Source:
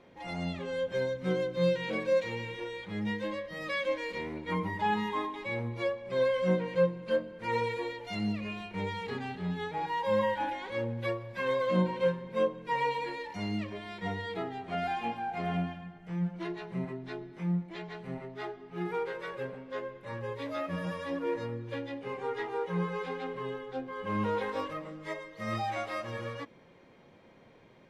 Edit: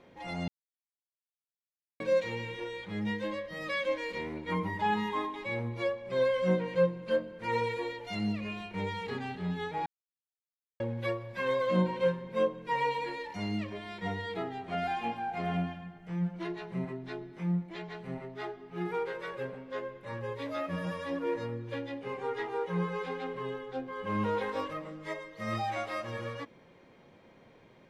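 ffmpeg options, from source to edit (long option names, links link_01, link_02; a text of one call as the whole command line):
ffmpeg -i in.wav -filter_complex "[0:a]asplit=5[link_01][link_02][link_03][link_04][link_05];[link_01]atrim=end=0.48,asetpts=PTS-STARTPTS,afade=type=out:start_time=0.476:duration=0.004:curve=hsin[link_06];[link_02]atrim=start=0.48:end=2,asetpts=PTS-STARTPTS,volume=0[link_07];[link_03]atrim=start=2:end=9.86,asetpts=PTS-STARTPTS,afade=type=in:duration=0.004:curve=hsin,afade=type=out:start_time=7.856:duration=0.004:curve=hsin[link_08];[link_04]atrim=start=9.86:end=10.8,asetpts=PTS-STARTPTS,volume=0[link_09];[link_05]atrim=start=10.8,asetpts=PTS-STARTPTS,afade=type=in:duration=0.004:curve=hsin[link_10];[link_06][link_07][link_08][link_09][link_10]concat=n=5:v=0:a=1" out.wav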